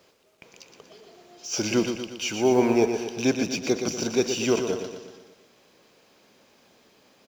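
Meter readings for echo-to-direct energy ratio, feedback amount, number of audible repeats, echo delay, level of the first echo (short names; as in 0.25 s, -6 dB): -6.0 dB, 53%, 5, 0.119 s, -7.5 dB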